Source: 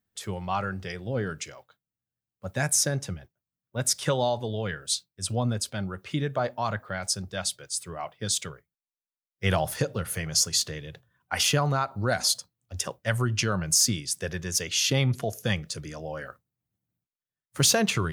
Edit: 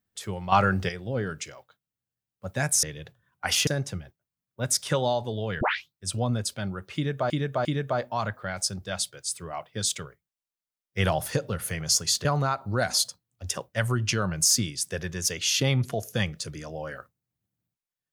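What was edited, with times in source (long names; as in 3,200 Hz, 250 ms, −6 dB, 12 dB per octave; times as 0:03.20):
0:00.52–0:00.89: clip gain +8.5 dB
0:04.77: tape start 0.31 s
0:06.11–0:06.46: repeat, 3 plays
0:10.71–0:11.55: move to 0:02.83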